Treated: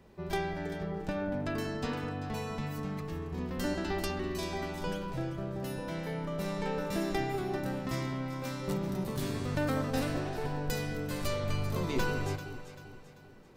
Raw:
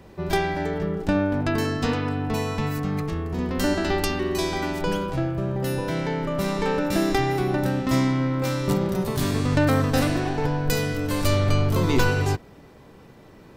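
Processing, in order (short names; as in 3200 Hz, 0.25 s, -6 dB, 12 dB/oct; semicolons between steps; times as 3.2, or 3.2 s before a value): flange 0.69 Hz, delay 4.6 ms, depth 1.1 ms, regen -66%; on a send: echo with dull and thin repeats by turns 0.195 s, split 1000 Hz, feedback 65%, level -8 dB; on the sum: gain -6.5 dB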